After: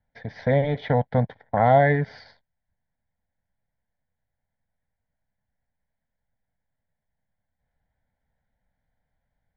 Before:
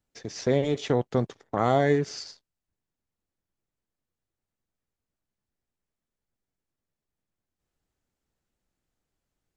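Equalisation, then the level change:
low-pass filter 2,700 Hz 24 dB per octave
phaser with its sweep stopped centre 1,800 Hz, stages 8
+8.0 dB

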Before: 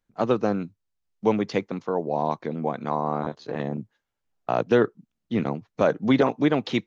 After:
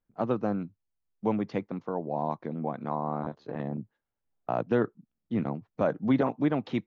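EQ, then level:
low-pass filter 1,100 Hz 6 dB per octave
dynamic equaliser 430 Hz, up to −5 dB, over −36 dBFS, Q 2.4
−3.0 dB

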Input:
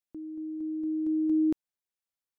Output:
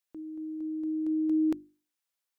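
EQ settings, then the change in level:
low-shelf EQ 390 Hz −11 dB
mains-hum notches 50/100/150/200/250/300/350 Hz
+6.0 dB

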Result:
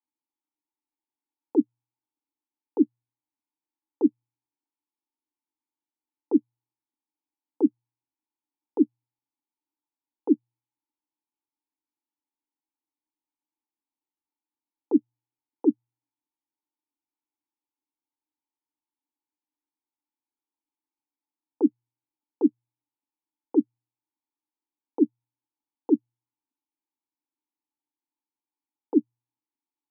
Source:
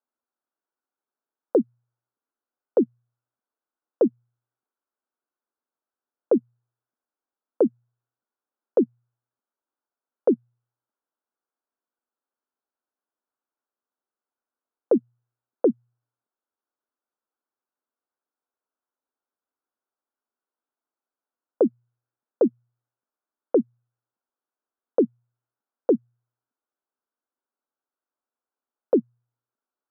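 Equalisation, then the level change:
formant filter u
+7.0 dB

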